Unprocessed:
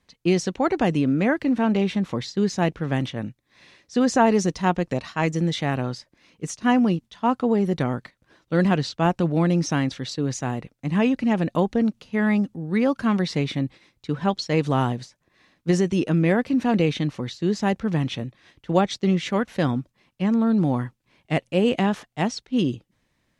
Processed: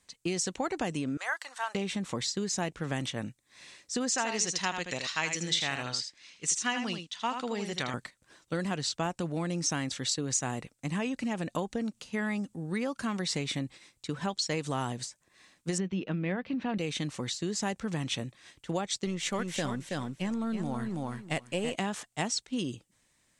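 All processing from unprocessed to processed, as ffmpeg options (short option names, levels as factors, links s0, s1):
-filter_complex "[0:a]asettb=1/sr,asplit=3[s0][s1][s2];[s0]atrim=end=1.174[s3];[s1]atrim=start=1.17:end=1.75,asetpts=PTS-STARTPTS,afade=t=in:d=0.004:c=qsin,afade=t=out:st=0.576:d=0.004:c=qsin,highpass=f=860:w=0.5412,highpass=f=860:w=1.3066,equalizer=f=2400:w=3.7:g=-9[s4];[s2]atrim=start=1.746[s5];[s3][s4]acrossfade=d=0.004:c1=hsin:c2=qsin[s6];[s6][s5]acrossfade=d=0.004:c1=qsin:c2=hsin,asettb=1/sr,asplit=3[s7][s8][s9];[s7]atrim=end=4.104[s10];[s8]atrim=start=4.1:end=7.94,asetpts=PTS-STARTPTS,afade=t=in:d=0.004:c=qsin,afade=t=out:st=3.836:d=0.004:c=qsin,lowpass=4600,tiltshelf=f=1500:g=-9,aecho=1:1:79:0.398,atrim=end_sample=169344[s11];[s9]atrim=start=7.936[s12];[s10][s11]acrossfade=d=0.004:c1=hsin:c2=qsin[s13];[s13][s12]acrossfade=d=0.004:c1=qsin:c2=hsin,asettb=1/sr,asplit=3[s14][s15][s16];[s14]atrim=end=15.784[s17];[s15]atrim=start=15.78:end=16.78,asetpts=PTS-STARTPTS,afade=t=in:d=0.004:c=qsin,afade=t=out:st=0.996:d=0.004:c=qsin,lowpass=f=3700:w=0.5412,lowpass=f=3700:w=1.3066,equalizer=f=190:w=6.4:g=8[s18];[s16]atrim=start=16.776[s19];[s17][s18]acrossfade=d=0.004:c1=hsin:c2=qsin[s20];[s20][s19]acrossfade=d=0.004:c1=qsin:c2=hsin,asettb=1/sr,asplit=3[s21][s22][s23];[s21]atrim=end=19.064[s24];[s22]atrim=start=19.06:end=21.76,asetpts=PTS-STARTPTS,afade=t=in:d=0.004:c=qsin,afade=t=out:st=2.696:d=0.004:c=qsin,aeval=exprs='if(lt(val(0),0),0.708*val(0),val(0))':c=same,aecho=1:1:326|652|978:0.531|0.0956|0.0172,atrim=end_sample=119070[s25];[s23]atrim=start=21.756[s26];[s24][s25]acrossfade=d=0.004:c1=hsin:c2=qsin[s27];[s27][s26]acrossfade=d=0.004:c1=qsin:c2=hsin,equalizer=f=8100:w=1.4:g=15,acompressor=threshold=0.0631:ratio=6,tiltshelf=f=650:g=-3,volume=0.668"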